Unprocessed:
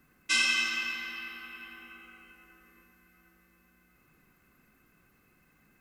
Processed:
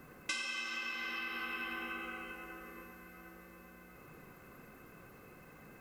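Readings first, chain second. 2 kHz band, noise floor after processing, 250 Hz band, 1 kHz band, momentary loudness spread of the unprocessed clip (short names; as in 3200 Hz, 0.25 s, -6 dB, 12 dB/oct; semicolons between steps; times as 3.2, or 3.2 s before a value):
-7.0 dB, -57 dBFS, +2.0 dB, +0.5 dB, 21 LU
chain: graphic EQ 125/500/1000 Hz +5/+11/+5 dB; compressor 20:1, threshold -42 dBFS, peak gain reduction 22 dB; gain +6 dB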